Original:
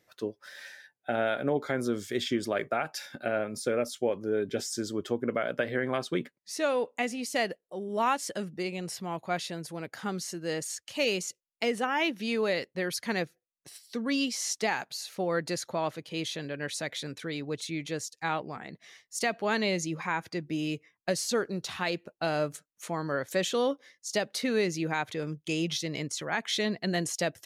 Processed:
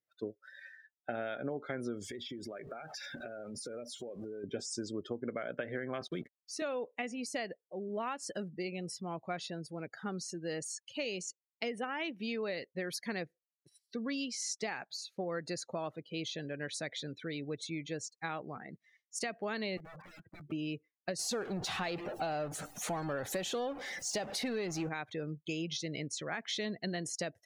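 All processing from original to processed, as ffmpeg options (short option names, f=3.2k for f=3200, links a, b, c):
-filter_complex "[0:a]asettb=1/sr,asplit=3[a][b][c];[a]atrim=end=2.014[d];[b]atrim=start=2.01:end=4.44,asetpts=PTS-STARTPTS,afade=t=in:d=0.004:c=qsin,afade=t=out:st=2.426:d=0.004:c=qsin,aeval=exprs='val(0)+0.5*0.0119*sgn(val(0))':c=same,acompressor=threshold=-35dB:ratio=16:attack=3.2:release=140:knee=1:detection=peak[e];[c]atrim=start=4.436[f];[d][e]acrossfade=d=0.004:c1=hsin:c2=qsin[g];[g][f]acrossfade=d=0.004:c1=qsin:c2=hsin,asettb=1/sr,asplit=3[h][i][j];[h]atrim=end=6.014[k];[i]atrim=start=6.01:end=6.62,asetpts=PTS-STARTPTS,afade=t=in:d=0.004:c=qsin,afade=t=out:st=0.606:d=0.004:c=qsin,acrossover=split=220|3000[l][m][n];[m]acompressor=threshold=-31dB:ratio=6:attack=3.2:release=140:knee=2.83:detection=peak[o];[l][o][n]amix=inputs=3:normalize=0,acrusher=bits=6:mix=0:aa=0.5[p];[j]atrim=start=6.616[q];[k][p]acrossfade=d=0.004:c1=hsin:c2=qsin[r];[r][q]acrossfade=d=0.004:c1=qsin:c2=hsin,asettb=1/sr,asplit=3[s][t][u];[s]atrim=end=19.774[v];[t]atrim=start=19.77:end=20.52,asetpts=PTS-STARTPTS,afade=t=in:d=0.004:c=qsin,afade=t=out:st=0.746:d=0.004:c=qsin,lowpass=f=1.8k:w=0.5412,lowpass=f=1.8k:w=1.3066,aeval=exprs='(mod(47.3*val(0)+1,2)-1)/47.3':c=same,acompressor=threshold=-41dB:ratio=10:attack=3.2:release=140:knee=1:detection=peak[w];[u]atrim=start=20.516[x];[v][w]acrossfade=d=0.004:c1=hsin:c2=qsin[y];[y][x]acrossfade=d=0.004:c1=qsin:c2=hsin,asettb=1/sr,asplit=3[z][aa][ab];[z]atrim=end=21.194[ac];[aa]atrim=start=21.19:end=24.89,asetpts=PTS-STARTPTS,afade=t=in:d=0.004:c=qsin,afade=t=out:st=3.696:d=0.004:c=qsin,aeval=exprs='val(0)+0.5*0.0282*sgn(val(0))':c=same,equalizer=f=780:t=o:w=0.39:g=8[ad];[ab]atrim=start=24.886[ae];[ac][ad]acrossfade=d=0.004:c1=hsin:c2=qsin[af];[af][ae]acrossfade=d=0.004:c1=qsin:c2=hsin,afftdn=nr=24:nf=-43,equalizer=f=920:t=o:w=0.26:g=-4.5,acompressor=threshold=-30dB:ratio=6,volume=-3.5dB"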